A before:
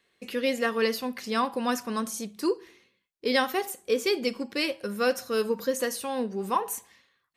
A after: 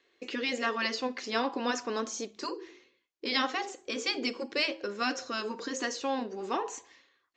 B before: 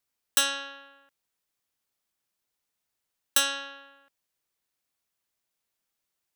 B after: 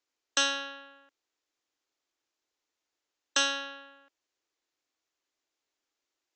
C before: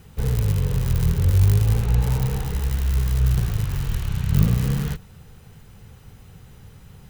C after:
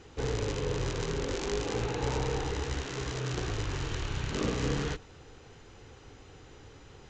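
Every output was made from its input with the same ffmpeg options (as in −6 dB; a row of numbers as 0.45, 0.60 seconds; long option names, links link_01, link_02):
-af "lowshelf=frequency=240:width_type=q:width=3:gain=-7.5,afftfilt=real='re*lt(hypot(re,im),0.355)':imag='im*lt(hypot(re,im),0.355)':win_size=1024:overlap=0.75,aresample=16000,aresample=44100"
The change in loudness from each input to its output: −4.0, −2.5, −11.5 LU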